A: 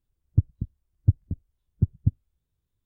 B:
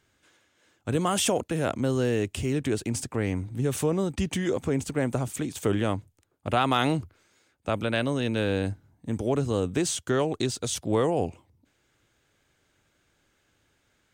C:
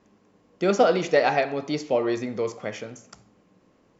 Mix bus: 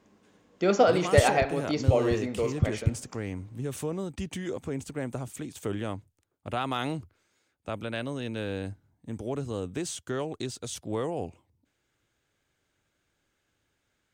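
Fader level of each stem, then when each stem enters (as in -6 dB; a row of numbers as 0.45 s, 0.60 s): -3.0 dB, -7.0 dB, -2.0 dB; 0.80 s, 0.00 s, 0.00 s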